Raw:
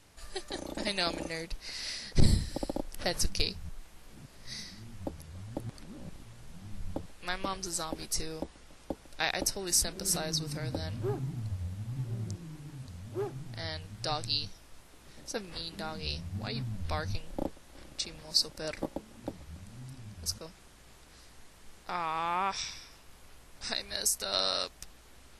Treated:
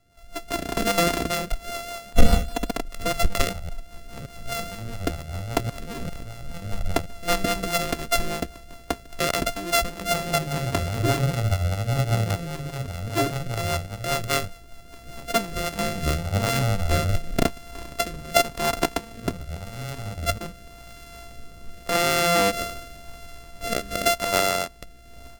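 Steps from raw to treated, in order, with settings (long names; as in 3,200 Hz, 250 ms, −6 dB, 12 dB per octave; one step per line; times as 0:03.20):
samples sorted by size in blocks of 64 samples
rotating-speaker cabinet horn 5 Hz, later 0.9 Hz, at 0:15.07
0:02.13–0:02.71: comb filter 4.1 ms, depth 100%
automatic gain control gain up to 16 dB
level −1 dB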